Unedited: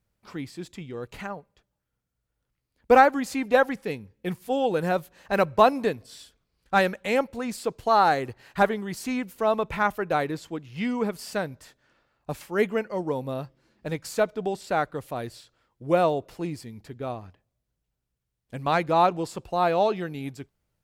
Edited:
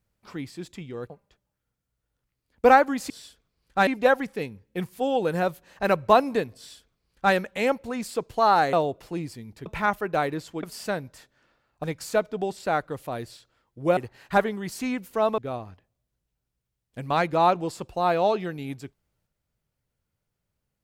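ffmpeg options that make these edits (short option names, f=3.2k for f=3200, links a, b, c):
-filter_complex "[0:a]asplit=10[a][b][c][d][e][f][g][h][i][j];[a]atrim=end=1.102[k];[b]atrim=start=1.358:end=3.362[l];[c]atrim=start=6.058:end=6.832[m];[d]atrim=start=3.358:end=8.222[n];[e]atrim=start=16.008:end=16.942[o];[f]atrim=start=9.628:end=10.602[p];[g]atrim=start=11.098:end=12.312[q];[h]atrim=start=13.878:end=16.012[r];[i]atrim=start=8.218:end=9.632[s];[j]atrim=start=16.938[t];[k][l]acrossfade=d=0.004:c1=hsin:c2=hsin[u];[u][m]acrossfade=d=0.004:c1=hsin:c2=hsin[v];[v][n]acrossfade=d=0.004:c1=hsin:c2=hsin[w];[w][o]acrossfade=d=0.004:c1=hsin:c2=hsin[x];[x][p]acrossfade=d=0.004:c1=hsin:c2=hsin[y];[y][q]acrossfade=d=0.004:c1=hsin:c2=hsin[z];[z][r]acrossfade=d=0.004:c1=hsin:c2=hsin[aa];[aa][s]acrossfade=d=0.004:c1=hsin:c2=hsin[ab];[ab][t]acrossfade=d=0.004:c1=hsin:c2=hsin"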